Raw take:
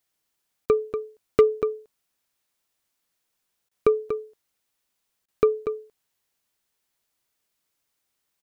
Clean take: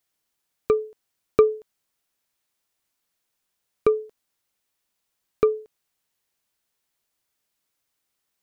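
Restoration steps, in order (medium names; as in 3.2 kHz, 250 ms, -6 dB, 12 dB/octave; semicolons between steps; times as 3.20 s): clip repair -8 dBFS; interpolate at 0.66/3.69/5.26 s, 21 ms; inverse comb 239 ms -9 dB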